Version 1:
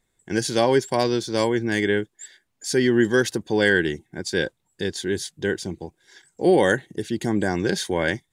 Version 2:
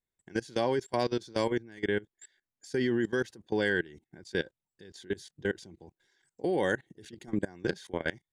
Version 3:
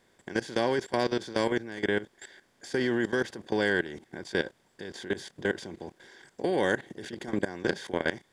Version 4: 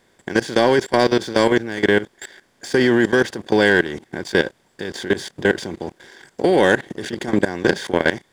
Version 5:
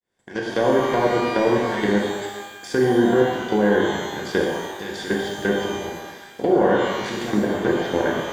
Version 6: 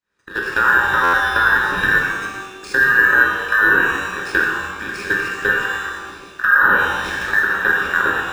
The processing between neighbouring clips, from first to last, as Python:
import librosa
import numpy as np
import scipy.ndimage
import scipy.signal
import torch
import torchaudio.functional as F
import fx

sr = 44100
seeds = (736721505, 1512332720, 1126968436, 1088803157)

y1 = fx.high_shelf(x, sr, hz=7500.0, db=-9.0)
y1 = fx.level_steps(y1, sr, step_db=22)
y1 = F.gain(torch.from_numpy(y1), -5.5).numpy()
y2 = fx.bin_compress(y1, sr, power=0.6)
y2 = fx.low_shelf(y2, sr, hz=190.0, db=-4.0)
y3 = fx.leveller(y2, sr, passes=1)
y3 = F.gain(torch.from_numpy(y3), 8.5).numpy()
y4 = fx.fade_in_head(y3, sr, length_s=0.68)
y4 = fx.env_lowpass_down(y4, sr, base_hz=1000.0, full_db=-12.5)
y4 = fx.rev_shimmer(y4, sr, seeds[0], rt60_s=1.2, semitones=12, shimmer_db=-8, drr_db=-2.0)
y4 = F.gain(torch.from_numpy(y4), -5.5).numpy()
y5 = fx.band_invert(y4, sr, width_hz=2000)
y5 = fx.buffer_glitch(y5, sr, at_s=(1.03,), block=512, repeats=8)
y5 = np.interp(np.arange(len(y5)), np.arange(len(y5))[::3], y5[::3])
y5 = F.gain(torch.from_numpy(y5), 4.0).numpy()